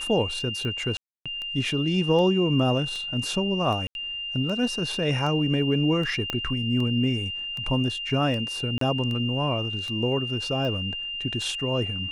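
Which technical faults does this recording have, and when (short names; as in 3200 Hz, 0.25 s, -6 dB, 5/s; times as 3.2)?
tick 78 rpm -22 dBFS
tone 2800 Hz -30 dBFS
0.97–1.26 gap 0.286 s
3.87–3.95 gap 81 ms
6.3 pop -13 dBFS
8.78–8.81 gap 33 ms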